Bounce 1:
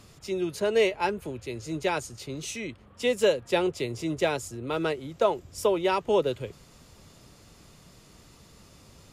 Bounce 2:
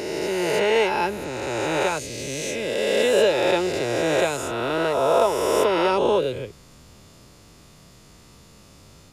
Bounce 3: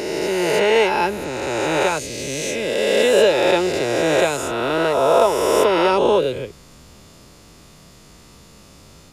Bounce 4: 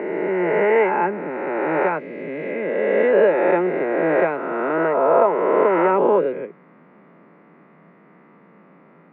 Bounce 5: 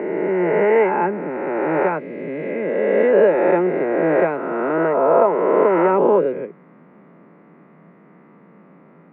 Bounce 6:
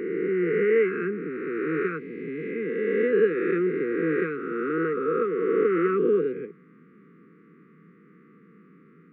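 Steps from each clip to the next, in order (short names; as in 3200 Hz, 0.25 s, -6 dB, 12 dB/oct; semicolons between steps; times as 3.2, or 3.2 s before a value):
spectral swells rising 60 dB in 2.72 s
bell 110 Hz -4.5 dB 0.44 oct; gain +4 dB
Chebyshev band-pass 170–2100 Hz, order 4
tilt -1.5 dB/oct
brick-wall FIR band-stop 500–1100 Hz; gain -5 dB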